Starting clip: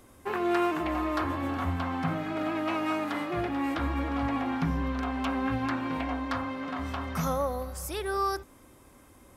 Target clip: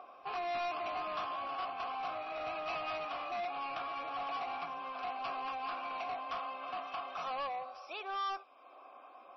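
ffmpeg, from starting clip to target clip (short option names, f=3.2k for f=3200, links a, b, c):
-filter_complex "[0:a]highshelf=f=5.6k:g=10.5,acrossover=split=1800[a][b];[a]acompressor=mode=upward:threshold=-37dB:ratio=2.5[c];[c][b]amix=inputs=2:normalize=0,asplit=3[d][e][f];[d]bandpass=f=730:t=q:w=8,volume=0dB[g];[e]bandpass=f=1.09k:t=q:w=8,volume=-6dB[h];[f]bandpass=f=2.44k:t=q:w=8,volume=-9dB[i];[g][h][i]amix=inputs=3:normalize=0,asplit=2[j][k];[k]highpass=f=720:p=1,volume=21dB,asoftclip=type=tanh:threshold=-23.5dB[l];[j][l]amix=inputs=2:normalize=0,lowpass=f=4.9k:p=1,volume=-6dB,tiltshelf=f=1.5k:g=-3,volume=-5dB" -ar 22050 -c:a libmp3lame -b:a 24k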